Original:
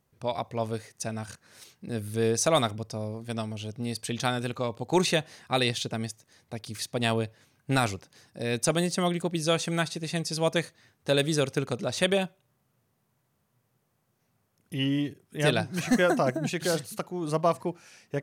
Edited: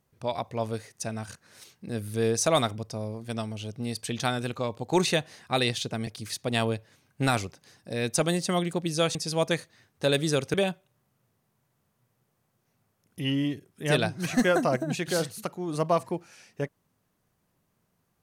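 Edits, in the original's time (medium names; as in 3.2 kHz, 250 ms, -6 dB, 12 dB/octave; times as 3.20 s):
6.07–6.56 s: delete
9.64–10.20 s: delete
11.59–12.08 s: delete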